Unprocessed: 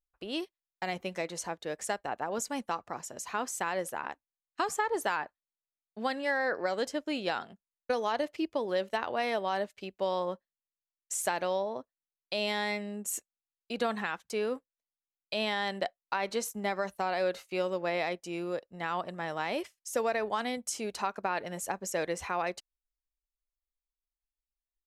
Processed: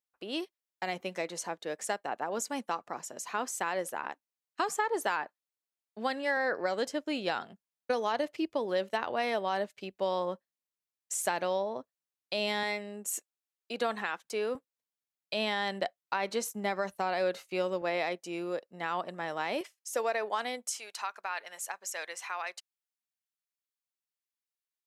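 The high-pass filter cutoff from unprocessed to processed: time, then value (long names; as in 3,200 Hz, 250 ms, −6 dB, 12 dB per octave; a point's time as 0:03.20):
190 Hz
from 0:06.37 86 Hz
from 0:12.63 270 Hz
from 0:14.55 86 Hz
from 0:17.82 190 Hz
from 0:19.61 390 Hz
from 0:20.69 1,100 Hz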